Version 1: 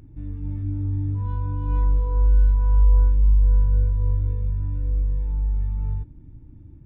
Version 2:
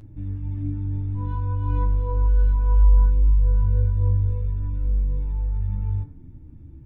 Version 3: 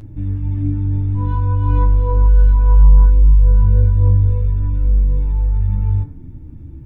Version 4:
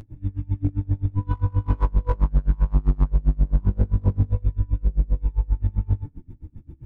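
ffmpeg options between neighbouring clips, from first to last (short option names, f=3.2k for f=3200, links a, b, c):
-af "bandreject=f=73.82:t=h:w=4,bandreject=f=147.64:t=h:w=4,bandreject=f=221.46:t=h:w=4,bandreject=f=295.28:t=h:w=4,bandreject=f=369.1:t=h:w=4,bandreject=f=442.92:t=h:w=4,bandreject=f=516.74:t=h:w=4,bandreject=f=590.56:t=h:w=4,bandreject=f=664.38:t=h:w=4,bandreject=f=738.2:t=h:w=4,bandreject=f=812.02:t=h:w=4,bandreject=f=885.84:t=h:w=4,bandreject=f=959.66:t=h:w=4,bandreject=f=1.03348k:t=h:w=4,bandreject=f=1.1073k:t=h:w=4,bandreject=f=1.18112k:t=h:w=4,bandreject=f=1.25494k:t=h:w=4,bandreject=f=1.32876k:t=h:w=4,bandreject=f=1.40258k:t=h:w=4,bandreject=f=1.4764k:t=h:w=4,bandreject=f=1.55022k:t=h:w=4,bandreject=f=1.62404k:t=h:w=4,bandreject=f=1.69786k:t=h:w=4,bandreject=f=1.77168k:t=h:w=4,bandreject=f=1.8455k:t=h:w=4,bandreject=f=1.91932k:t=h:w=4,bandreject=f=1.99314k:t=h:w=4,bandreject=f=2.06696k:t=h:w=4,bandreject=f=2.14078k:t=h:w=4,bandreject=f=2.2146k:t=h:w=4,flanger=delay=9.2:depth=6.5:regen=35:speed=0.51:shape=triangular,volume=6dB"
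-af "acontrast=87,volume=1.5dB"
-af "volume=11.5dB,asoftclip=hard,volume=-11.5dB,aeval=exprs='val(0)*pow(10,-29*(0.5-0.5*cos(2*PI*7.6*n/s))/20)':c=same"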